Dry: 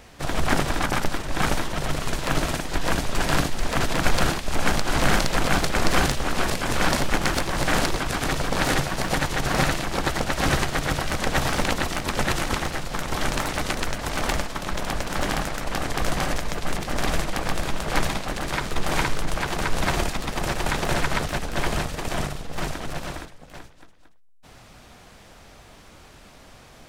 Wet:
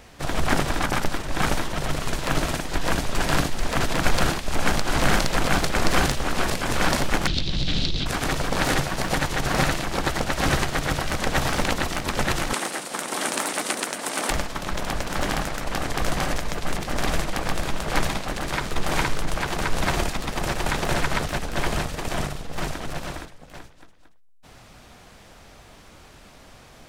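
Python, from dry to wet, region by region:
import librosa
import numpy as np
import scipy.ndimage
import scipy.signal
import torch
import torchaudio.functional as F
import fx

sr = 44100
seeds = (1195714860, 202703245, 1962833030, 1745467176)

y = fx.chain(x, sr, fx.curve_eq(hz=(160.0, 1000.0, 1800.0, 3800.0, 11000.0), db=(0, -21, -16, 6, -28)),
    fx.env_flatten(amount_pct=50), at=(7.27, 8.06))
y = fx.chain(y, sr, fx.highpass(hz=220.0, slope=24),
    fx.peak_eq(hz=9100.0, db=11.5, octaves=0.55), at=(12.53, 14.3))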